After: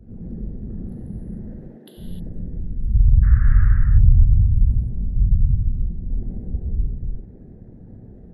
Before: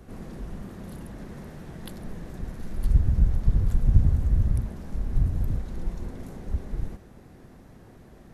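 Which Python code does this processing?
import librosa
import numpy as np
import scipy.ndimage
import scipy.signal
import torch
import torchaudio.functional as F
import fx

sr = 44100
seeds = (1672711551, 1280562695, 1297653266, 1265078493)

y = fx.envelope_sharpen(x, sr, power=2.0)
y = fx.highpass(y, sr, hz=fx.line((1.44, 170.0), (1.97, 410.0)), slope=24, at=(1.44, 1.97), fade=0.02)
y = fx.dmg_noise_band(y, sr, seeds[0], low_hz=1100.0, high_hz=1800.0, level_db=-44.0, at=(3.22, 3.67), fade=0.02)
y = fx.peak_eq(y, sr, hz=1100.0, db=-9.5, octaves=0.43)
y = fx.rev_gated(y, sr, seeds[1], gate_ms=330, shape='flat', drr_db=-3.5)
y = y * librosa.db_to_amplitude(3.0)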